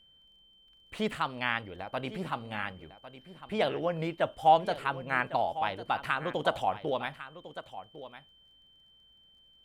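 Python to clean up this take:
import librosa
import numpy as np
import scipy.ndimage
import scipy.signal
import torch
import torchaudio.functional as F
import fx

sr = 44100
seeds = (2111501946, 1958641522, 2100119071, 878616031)

y = fx.fix_declick_ar(x, sr, threshold=6.5)
y = fx.notch(y, sr, hz=3100.0, q=30.0)
y = fx.fix_echo_inverse(y, sr, delay_ms=1102, level_db=-14.0)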